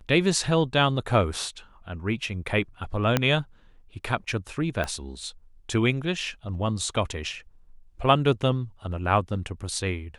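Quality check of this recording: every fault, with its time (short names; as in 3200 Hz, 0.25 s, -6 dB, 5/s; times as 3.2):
3.17 pop -6 dBFS
4.84 pop -15 dBFS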